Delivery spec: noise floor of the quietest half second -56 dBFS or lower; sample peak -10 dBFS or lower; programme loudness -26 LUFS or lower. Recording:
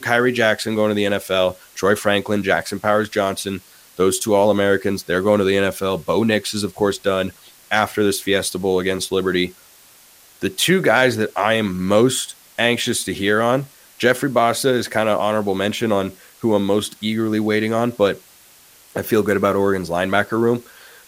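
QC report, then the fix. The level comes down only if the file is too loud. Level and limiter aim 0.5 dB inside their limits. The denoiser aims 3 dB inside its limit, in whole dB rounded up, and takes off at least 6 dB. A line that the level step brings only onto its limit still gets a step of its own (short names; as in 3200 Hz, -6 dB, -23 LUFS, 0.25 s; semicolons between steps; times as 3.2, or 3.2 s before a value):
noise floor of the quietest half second -49 dBFS: fail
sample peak -2.0 dBFS: fail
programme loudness -19.0 LUFS: fail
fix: gain -7.5 dB; limiter -10.5 dBFS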